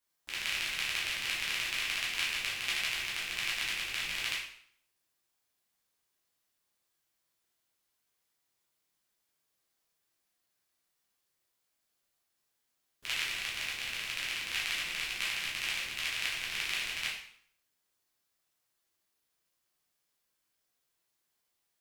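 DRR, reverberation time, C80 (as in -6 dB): -6.5 dB, 0.60 s, 7.0 dB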